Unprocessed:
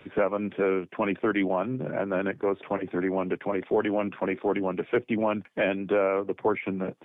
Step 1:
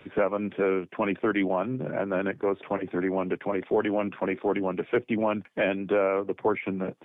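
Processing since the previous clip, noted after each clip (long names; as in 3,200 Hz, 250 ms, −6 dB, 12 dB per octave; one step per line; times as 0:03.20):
no processing that can be heard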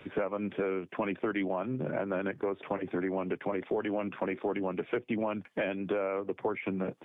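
downward compressor 4 to 1, threshold −29 dBFS, peak gain reduction 8.5 dB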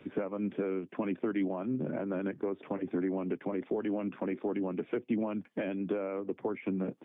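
parametric band 250 Hz +10.5 dB 1.6 octaves
level −7.5 dB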